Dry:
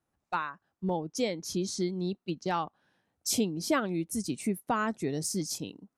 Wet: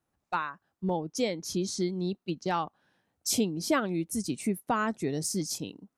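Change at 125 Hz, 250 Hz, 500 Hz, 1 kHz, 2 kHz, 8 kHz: +1.0, +1.0, +1.0, +1.0, +1.0, +1.0 decibels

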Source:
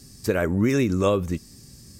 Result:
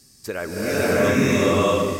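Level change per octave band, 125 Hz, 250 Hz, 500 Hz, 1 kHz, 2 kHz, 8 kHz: 0.0, +2.0, +5.0, +8.0, +8.0, +8.0 decibels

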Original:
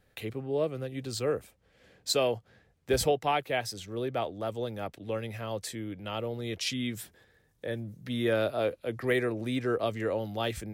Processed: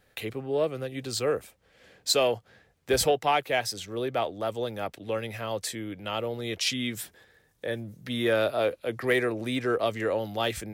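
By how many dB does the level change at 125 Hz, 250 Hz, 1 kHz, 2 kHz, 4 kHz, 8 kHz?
−1.0, +1.0, +4.0, +4.5, +5.0, +5.0 decibels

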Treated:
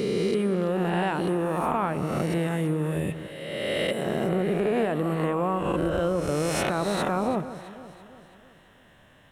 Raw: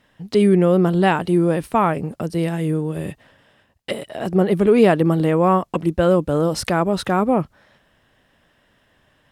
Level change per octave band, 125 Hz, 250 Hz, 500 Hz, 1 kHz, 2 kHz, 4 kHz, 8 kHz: −7.5, −8.5, −7.5, −7.0, −4.5, −2.5, −2.0 decibels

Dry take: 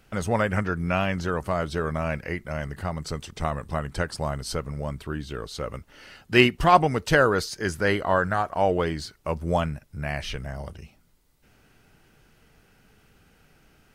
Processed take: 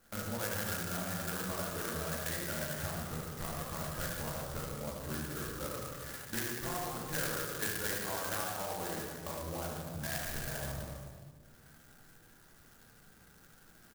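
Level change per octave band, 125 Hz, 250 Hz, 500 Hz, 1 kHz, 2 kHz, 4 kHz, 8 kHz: −12.5, −13.5, −15.5, −16.0, −12.5, −9.5, +1.5 decibels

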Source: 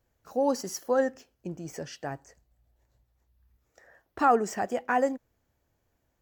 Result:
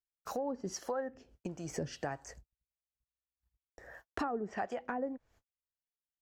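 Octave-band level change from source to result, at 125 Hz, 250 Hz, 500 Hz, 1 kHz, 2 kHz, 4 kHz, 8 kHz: −2.5, −8.0, −10.5, −12.0, −9.5, −6.0, −6.5 decibels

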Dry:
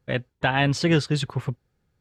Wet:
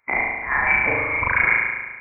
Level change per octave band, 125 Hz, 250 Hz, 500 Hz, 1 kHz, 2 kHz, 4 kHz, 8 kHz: −12.5 dB, −11.0 dB, −3.5 dB, +5.5 dB, +11.5 dB, below −25 dB, below −40 dB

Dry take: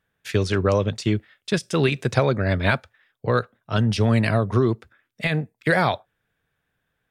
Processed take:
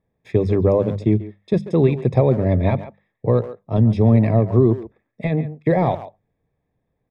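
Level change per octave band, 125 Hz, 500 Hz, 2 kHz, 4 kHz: +5.0 dB, +4.5 dB, −11.5 dB, below −10 dB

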